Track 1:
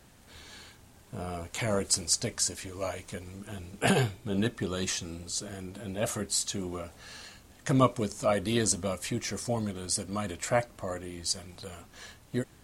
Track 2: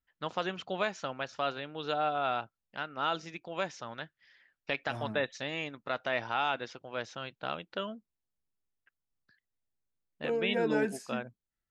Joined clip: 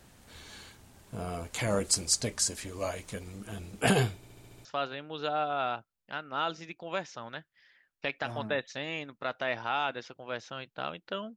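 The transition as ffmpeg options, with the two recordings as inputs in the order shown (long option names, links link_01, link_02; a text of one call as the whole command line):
ffmpeg -i cue0.wav -i cue1.wav -filter_complex "[0:a]apad=whole_dur=11.36,atrim=end=11.36,asplit=7[link_01][link_02][link_03][link_04][link_05][link_06][link_07];[link_01]atrim=end=4.232[link_08];[link_02]atrim=start=4.158:end=4.232[link_09];[link_03]atrim=start=4.158:end=4.232[link_10];[link_04]atrim=start=4.158:end=4.232[link_11];[link_05]atrim=start=4.158:end=4.232[link_12];[link_06]atrim=start=4.158:end=4.232[link_13];[link_07]atrim=start=4.158:end=4.232[link_14];[1:a]atrim=start=1.298:end=8.01[link_15];[link_08][link_09]acrossfade=duration=0.004:curve1=hsin:curve2=hsin[link_16];[link_16][link_10]acrossfade=duration=0.004:curve1=hsin:curve2=hsin[link_17];[link_17][link_11]acrossfade=duration=0.004:curve1=hsin:curve2=hsin[link_18];[link_18][link_12]acrossfade=duration=0.004:curve1=hsin:curve2=hsin[link_19];[link_19][link_13]acrossfade=duration=0.004:curve1=hsin:curve2=hsin[link_20];[link_20][link_14]acrossfade=duration=0.004:curve1=hsin:curve2=hsin[link_21];[link_21][link_15]acrossfade=duration=0.004:curve1=hsin:curve2=hsin" out.wav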